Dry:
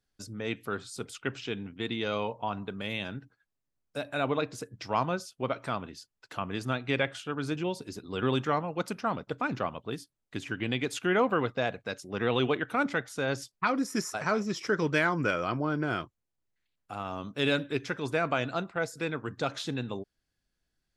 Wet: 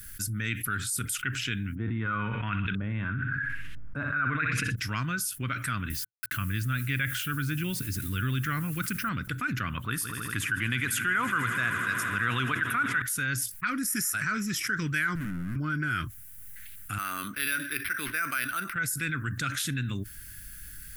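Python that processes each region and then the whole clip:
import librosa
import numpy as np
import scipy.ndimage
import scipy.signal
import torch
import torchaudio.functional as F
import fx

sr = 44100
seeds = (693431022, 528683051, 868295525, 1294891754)

y = fx.chain(x, sr, fx.echo_feedback(ms=63, feedback_pct=39, wet_db=-12.5),
    fx.filter_lfo_lowpass(shape='saw_up', hz=1.0, low_hz=630.0, high_hz=3200.0, q=2.9),
    fx.sustainer(db_per_s=21.0), at=(1.75, 4.76))
y = fx.chain(y, sr, fx.lowpass(hz=5800.0, slope=12),
    fx.low_shelf(hz=130.0, db=8.5),
    fx.quant_dither(seeds[0], bits=10, dither='none'), at=(5.9, 9.09))
y = fx.chain(y, sr, fx.peak_eq(hz=1000.0, db=13.0, octaves=1.4),
    fx.echo_swell(ms=80, loudest=5, wet_db=-18.0), at=(9.77, 13.02))
y = fx.chain(y, sr, fx.lowpass_res(hz=240.0, q=1.9),
    fx.clip_hard(threshold_db=-38.0), at=(15.15, 15.56))
y = fx.chain(y, sr, fx.highpass(hz=450.0, slope=12),
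    fx.resample_linear(factor=6), at=(16.98, 18.73))
y = fx.curve_eq(y, sr, hz=(110.0, 160.0, 310.0, 450.0, 820.0, 1500.0, 2900.0, 4200.0, 7000.0, 11000.0), db=(0, -6, -12, -25, -29, 1, -5, -9, -1, 14))
y = fx.env_flatten(y, sr, amount_pct=70)
y = y * 10.0 ** (-4.5 / 20.0)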